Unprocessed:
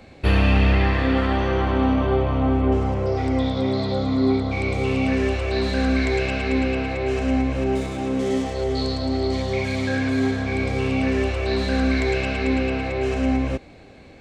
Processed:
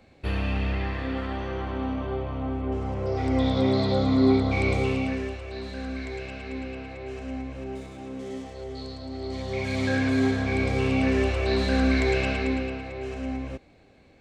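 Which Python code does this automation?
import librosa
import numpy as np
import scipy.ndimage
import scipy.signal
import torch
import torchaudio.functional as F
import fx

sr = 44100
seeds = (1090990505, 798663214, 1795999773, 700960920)

y = fx.gain(x, sr, db=fx.line((2.66, -10.0), (3.54, 0.0), (4.73, 0.0), (5.41, -13.0), (9.1, -13.0), (9.85, -1.5), (12.3, -1.5), (12.84, -10.5)))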